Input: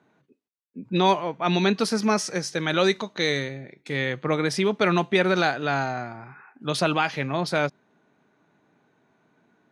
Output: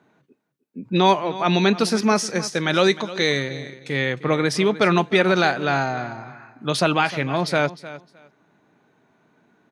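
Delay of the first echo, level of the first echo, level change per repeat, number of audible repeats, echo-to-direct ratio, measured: 307 ms, −16.0 dB, −15.0 dB, 2, −16.0 dB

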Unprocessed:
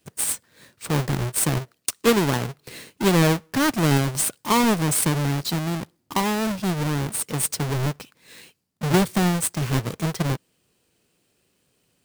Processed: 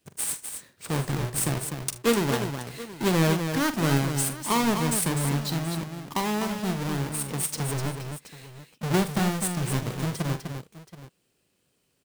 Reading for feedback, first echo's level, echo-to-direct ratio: repeats not evenly spaced, −11.5 dB, −5.0 dB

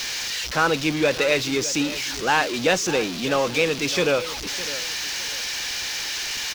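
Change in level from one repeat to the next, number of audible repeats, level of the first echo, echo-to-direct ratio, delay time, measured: −10.0 dB, 2, −15.5 dB, −15.0 dB, 608 ms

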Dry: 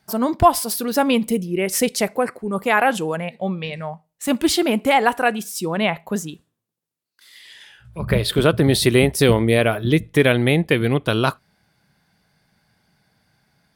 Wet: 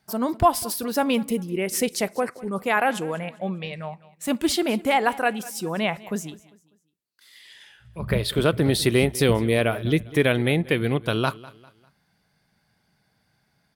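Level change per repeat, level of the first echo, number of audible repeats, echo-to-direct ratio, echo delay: −8.5 dB, −20.0 dB, 2, −19.5 dB, 199 ms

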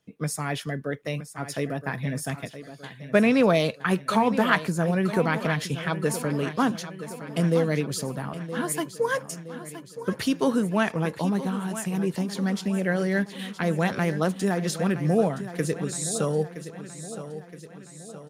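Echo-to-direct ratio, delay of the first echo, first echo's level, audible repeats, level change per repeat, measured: −11.0 dB, 969 ms, −12.5 dB, 5, −5.5 dB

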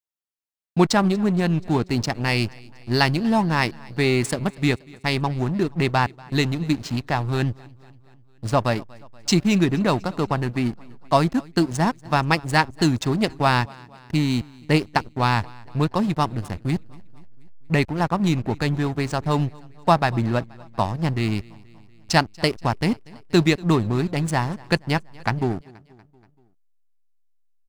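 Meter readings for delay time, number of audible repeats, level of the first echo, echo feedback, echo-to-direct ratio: 239 ms, 3, −24.0 dB, 59%, −22.0 dB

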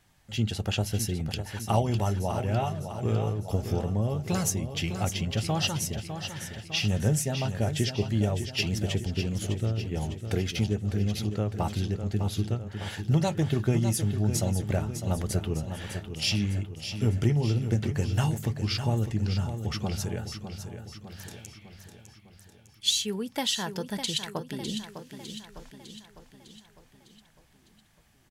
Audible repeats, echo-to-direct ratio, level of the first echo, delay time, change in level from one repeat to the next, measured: 5, −7.5 dB, −9.0 dB, 604 ms, −5.5 dB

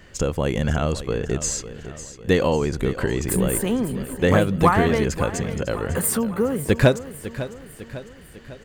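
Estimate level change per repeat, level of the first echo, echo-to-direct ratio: −5.5 dB, −13.5 dB, −12.0 dB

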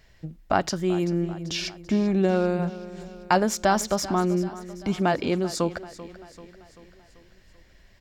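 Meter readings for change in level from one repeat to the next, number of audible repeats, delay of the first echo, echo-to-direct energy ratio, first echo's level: −5.5 dB, 4, 388 ms, −14.5 dB, −16.0 dB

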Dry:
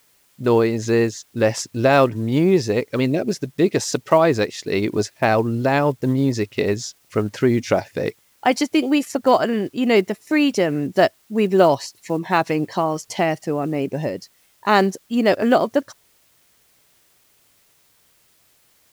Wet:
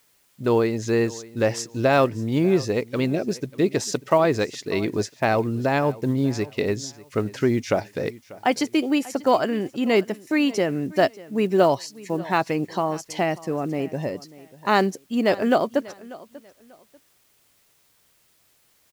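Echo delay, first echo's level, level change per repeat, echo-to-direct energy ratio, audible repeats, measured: 591 ms, −20.0 dB, −11.5 dB, −19.5 dB, 2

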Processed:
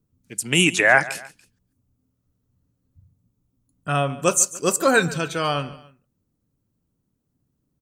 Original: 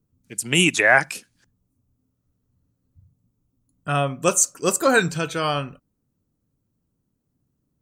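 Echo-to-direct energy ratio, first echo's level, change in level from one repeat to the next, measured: −17.5 dB, −18.0 dB, −7.5 dB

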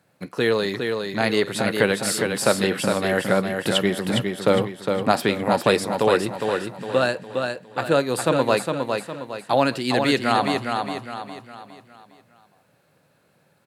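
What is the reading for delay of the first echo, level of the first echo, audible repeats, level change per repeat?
409 ms, −5.0 dB, 4, −7.5 dB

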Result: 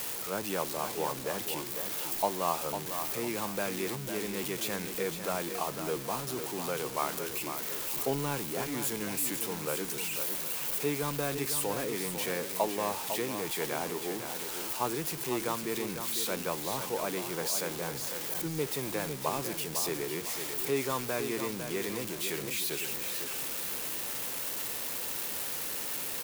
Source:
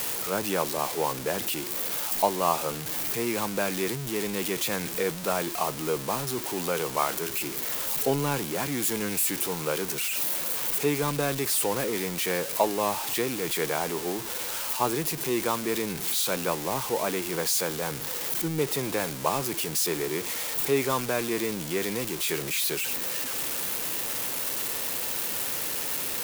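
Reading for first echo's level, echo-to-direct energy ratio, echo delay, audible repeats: −8.0 dB, −7.5 dB, 502 ms, 2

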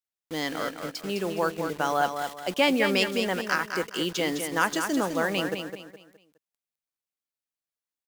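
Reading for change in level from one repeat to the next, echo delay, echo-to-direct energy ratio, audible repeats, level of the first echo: −9.5 dB, 208 ms, −6.5 dB, 3, −7.0 dB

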